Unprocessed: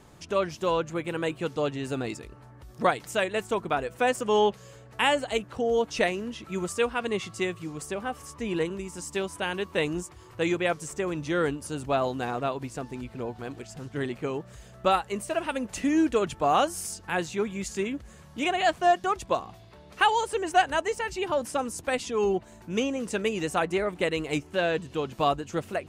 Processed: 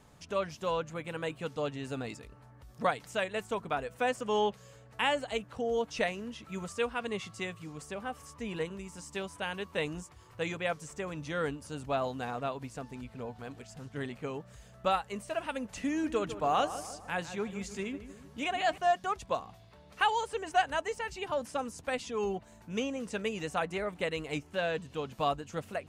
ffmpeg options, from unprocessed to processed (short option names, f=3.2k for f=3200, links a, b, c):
-filter_complex "[0:a]asettb=1/sr,asplit=3[a][b][c];[a]atrim=end=15.884[d];[b]atrim=start=15.88:end=18.78,asetpts=PTS-STARTPTS,afade=t=in:d=0.004:c=qsin,afade=t=out:st=2.896:d=0.004:c=qsin,asplit=2[e][f];[f]adelay=153,lowpass=f=1.6k:p=1,volume=-11dB,asplit=2[g][h];[h]adelay=153,lowpass=f=1.6k:p=1,volume=0.53,asplit=2[i][j];[j]adelay=153,lowpass=f=1.6k:p=1,volume=0.53,asplit=2[k][l];[l]adelay=153,lowpass=f=1.6k:p=1,volume=0.53,asplit=2[m][n];[n]adelay=153,lowpass=f=1.6k:p=1,volume=0.53,asplit=2[o][p];[p]adelay=153,lowpass=f=1.6k:p=1,volume=0.53[q];[e][g][i][k][m][o][q]amix=inputs=7:normalize=0,atrim=end_sample=127890[r];[c]atrim=start=18.776[s];[d][r]acrossfade=d=0.004:c1=hsin:c2=qsin[t];[t][s]acrossfade=d=0.004:c1=qsin:c2=hsin,acrossover=split=6800[u][v];[v]acompressor=threshold=-47dB:ratio=4:attack=1:release=60[w];[u][w]amix=inputs=2:normalize=0,equalizer=f=350:w=7.5:g=-12.5,volume=-5.5dB"